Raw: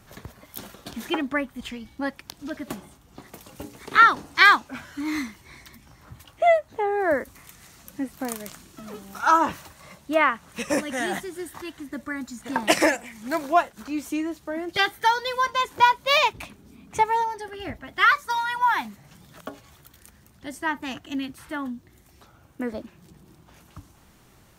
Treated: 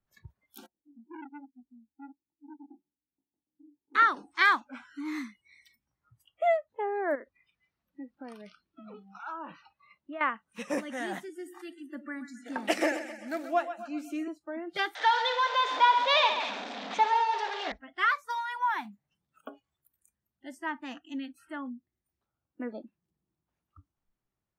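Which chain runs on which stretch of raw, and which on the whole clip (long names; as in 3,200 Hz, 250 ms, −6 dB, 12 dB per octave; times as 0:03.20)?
0:00.66–0:03.95: formant resonators in series u + chorus effect 1.2 Hz, delay 18.5 ms, depth 7.9 ms + saturating transformer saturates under 1,100 Hz
0:07.15–0:10.21: Savitzky-Golay smoothing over 15 samples + downward compressor 2.5 to 1, threshold −34 dBFS
0:11.29–0:14.28: high-pass filter 190 Hz 24 dB per octave + notch filter 1,000 Hz, Q 5.3 + echo with a time of its own for lows and highs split 480 Hz, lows 87 ms, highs 129 ms, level −11 dB
0:14.95–0:17.72: converter with a step at zero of −22.5 dBFS + loudspeaker in its box 370–5,700 Hz, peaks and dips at 370 Hz −10 dB, 730 Hz +7 dB, 1,800 Hz +3 dB, 3,600 Hz +8 dB + echo machine with several playback heads 67 ms, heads first and second, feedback 43%, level −11.5 dB
whole clip: noise reduction from a noise print of the clip's start 26 dB; high-shelf EQ 3,800 Hz −8 dB; level −7 dB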